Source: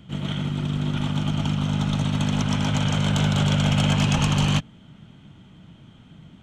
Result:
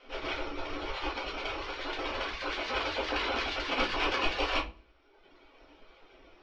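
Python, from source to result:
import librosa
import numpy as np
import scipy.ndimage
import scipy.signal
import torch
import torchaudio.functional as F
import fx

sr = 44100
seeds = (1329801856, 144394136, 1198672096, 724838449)

y = np.r_[np.sort(x[:len(x) // 8 * 8].reshape(-1, 8), axis=1).ravel(), x[len(x) // 8 * 8:]]
y = fx.highpass(y, sr, hz=84.0, slope=6, at=(1.26, 3.69))
y = fx.hum_notches(y, sr, base_hz=50, count=5)
y = fx.spec_gate(y, sr, threshold_db=-15, keep='weak')
y = scipy.signal.sosfilt(scipy.signal.butter(4, 3900.0, 'lowpass', fs=sr, output='sos'), y)
y = fx.echo_feedback(y, sr, ms=108, feedback_pct=41, wet_db=-20.5)
y = fx.dereverb_blind(y, sr, rt60_s=1.2)
y = fx.room_shoebox(y, sr, seeds[0], volume_m3=130.0, walls='furnished', distance_m=2.0)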